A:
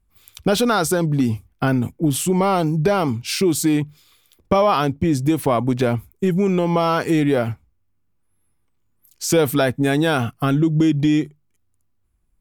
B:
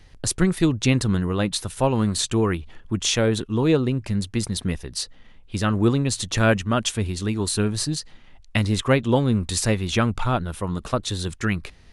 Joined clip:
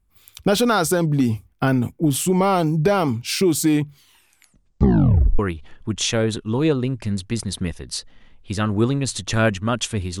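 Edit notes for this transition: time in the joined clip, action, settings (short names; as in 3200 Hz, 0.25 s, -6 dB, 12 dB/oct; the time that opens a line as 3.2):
A
3.86 tape stop 1.53 s
5.39 switch to B from 2.43 s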